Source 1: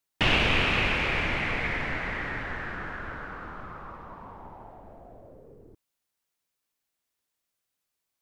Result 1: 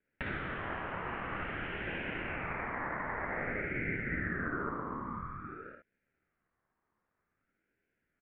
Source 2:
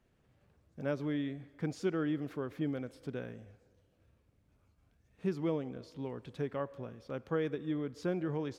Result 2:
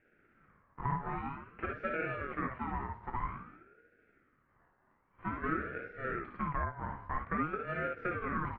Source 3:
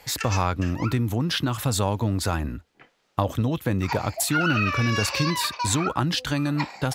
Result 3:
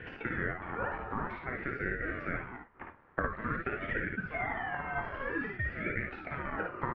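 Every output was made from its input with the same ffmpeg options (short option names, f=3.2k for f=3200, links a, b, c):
-filter_complex "[0:a]asplit=2[a][b];[b]acrusher=samples=40:mix=1:aa=0.000001,volume=-9dB[c];[a][c]amix=inputs=2:normalize=0,acontrast=75,highpass=f=530:w=0.5412,highpass=f=530:w=1.3066,acompressor=threshold=-36dB:ratio=6,lowpass=f=1.3k:w=0.5412,lowpass=f=1.3k:w=1.3066,aecho=1:1:25|57|71:0.266|0.562|0.422,aeval=exprs='val(0)*sin(2*PI*690*n/s+690*0.4/0.51*sin(2*PI*0.51*n/s))':c=same,volume=7dB"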